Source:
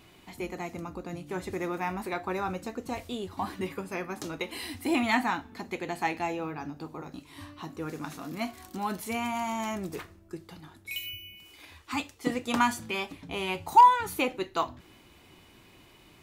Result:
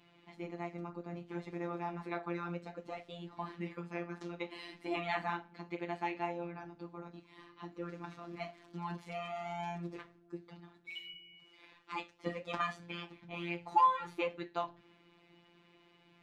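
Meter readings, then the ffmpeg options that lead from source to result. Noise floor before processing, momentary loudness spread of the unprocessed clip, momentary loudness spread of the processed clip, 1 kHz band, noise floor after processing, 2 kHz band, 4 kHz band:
−57 dBFS, 17 LU, 14 LU, −9.5 dB, −66 dBFS, −9.5 dB, −10.5 dB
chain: -af "highpass=110,lowpass=3400,afftfilt=real='hypot(re,im)*cos(PI*b)':imag='0':win_size=1024:overlap=0.75,flanger=delay=7:depth=5.1:regen=-63:speed=0.62:shape=sinusoidal"

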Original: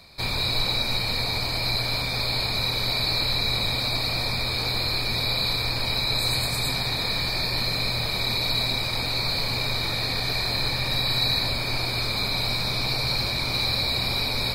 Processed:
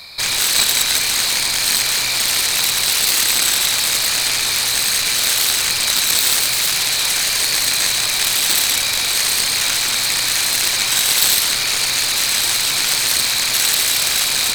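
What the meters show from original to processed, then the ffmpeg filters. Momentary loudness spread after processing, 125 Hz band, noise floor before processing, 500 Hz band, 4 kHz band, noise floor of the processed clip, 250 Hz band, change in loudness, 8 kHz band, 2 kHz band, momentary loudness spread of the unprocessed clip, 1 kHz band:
2 LU, −10.0 dB, −28 dBFS, −0.5 dB, +7.5 dB, −19 dBFS, −2.5 dB, +9.5 dB, +24.5 dB, +8.5 dB, 2 LU, +4.5 dB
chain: -af "aeval=exprs='0.282*(cos(1*acos(clip(val(0)/0.282,-1,1)))-cos(1*PI/2))+0.141*(cos(7*acos(clip(val(0)/0.282,-1,1)))-cos(7*PI/2))':channel_layout=same,tiltshelf=frequency=850:gain=-8"

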